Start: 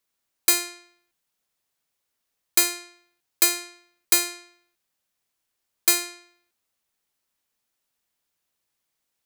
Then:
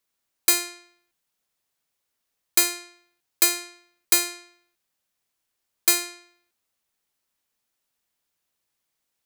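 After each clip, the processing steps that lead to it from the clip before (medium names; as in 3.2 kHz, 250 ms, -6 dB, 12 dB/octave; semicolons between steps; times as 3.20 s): no audible change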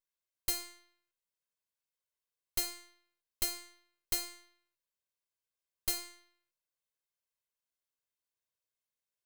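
comb filter that takes the minimum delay 1.9 ms; feedback comb 120 Hz, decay 0.47 s, harmonics all, mix 50%; trim -8 dB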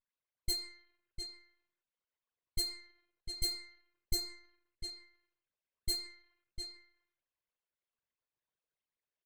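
resonances exaggerated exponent 3; delay 702 ms -7.5 dB; level-controlled noise filter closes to 2.8 kHz, open at -32.5 dBFS; trim +1 dB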